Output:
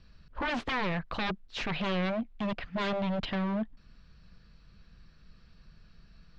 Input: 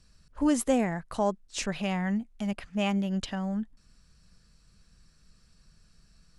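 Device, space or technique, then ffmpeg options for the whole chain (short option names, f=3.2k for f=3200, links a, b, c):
synthesiser wavefolder: -af "aeval=exprs='0.0316*(abs(mod(val(0)/0.0316+3,4)-2)-1)':c=same,lowpass=f=4k:w=0.5412,lowpass=f=4k:w=1.3066,volume=4.5dB"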